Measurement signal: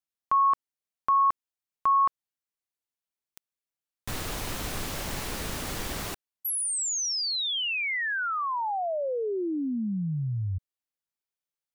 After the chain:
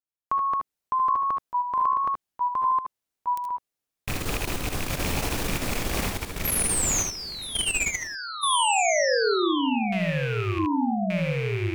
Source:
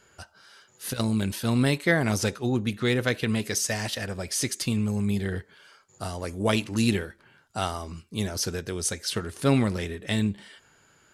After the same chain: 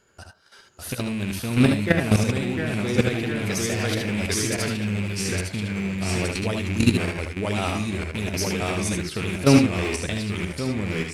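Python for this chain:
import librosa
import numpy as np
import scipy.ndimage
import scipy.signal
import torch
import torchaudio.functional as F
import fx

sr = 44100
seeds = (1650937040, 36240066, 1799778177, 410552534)

y = fx.rattle_buzz(x, sr, strikes_db=-33.0, level_db=-20.0)
y = fx.low_shelf(y, sr, hz=390.0, db=10.5)
y = fx.echo_pitch(y, sr, ms=588, semitones=-1, count=2, db_per_echo=-3.0)
y = fx.level_steps(y, sr, step_db=13)
y = fx.bass_treble(y, sr, bass_db=-6, treble_db=1)
y = fx.room_early_taps(y, sr, ms=(66, 77), db=(-10.5, -6.5))
y = F.gain(torch.from_numpy(y), 3.0).numpy()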